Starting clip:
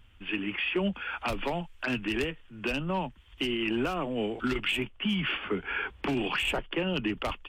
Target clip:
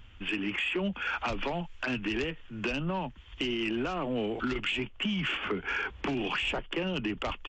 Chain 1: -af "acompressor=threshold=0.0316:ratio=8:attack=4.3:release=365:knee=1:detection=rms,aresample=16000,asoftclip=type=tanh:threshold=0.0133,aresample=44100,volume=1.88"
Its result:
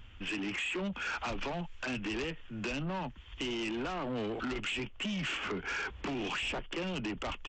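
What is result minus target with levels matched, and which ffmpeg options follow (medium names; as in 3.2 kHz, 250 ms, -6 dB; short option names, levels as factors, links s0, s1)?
saturation: distortion +13 dB
-af "acompressor=threshold=0.0316:ratio=8:attack=4.3:release=365:knee=1:detection=rms,aresample=16000,asoftclip=type=tanh:threshold=0.0447,aresample=44100,volume=1.88"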